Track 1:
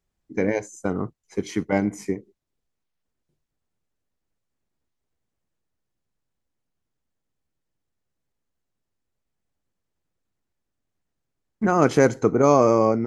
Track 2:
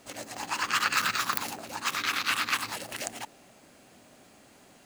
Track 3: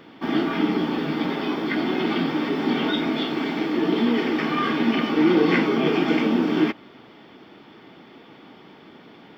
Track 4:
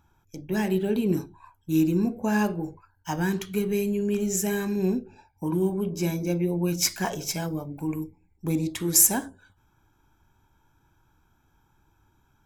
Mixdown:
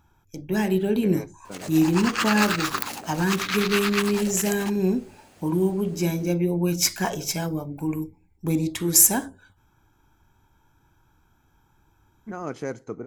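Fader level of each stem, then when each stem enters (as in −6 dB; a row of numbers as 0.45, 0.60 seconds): −14.5 dB, +1.5 dB, muted, +2.5 dB; 0.65 s, 1.45 s, muted, 0.00 s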